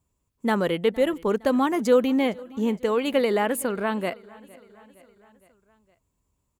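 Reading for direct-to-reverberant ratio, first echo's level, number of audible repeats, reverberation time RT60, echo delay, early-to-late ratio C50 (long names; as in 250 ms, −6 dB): no reverb audible, −23.0 dB, 3, no reverb audible, 462 ms, no reverb audible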